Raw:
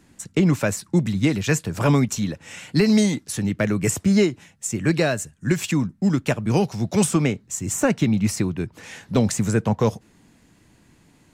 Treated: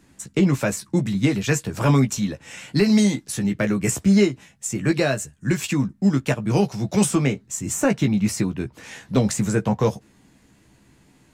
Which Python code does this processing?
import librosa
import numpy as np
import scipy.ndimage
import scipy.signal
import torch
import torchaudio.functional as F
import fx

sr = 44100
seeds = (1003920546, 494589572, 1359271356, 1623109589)

y = fx.doubler(x, sr, ms=15.0, db=-6.0)
y = F.gain(torch.from_numpy(y), -1.0).numpy()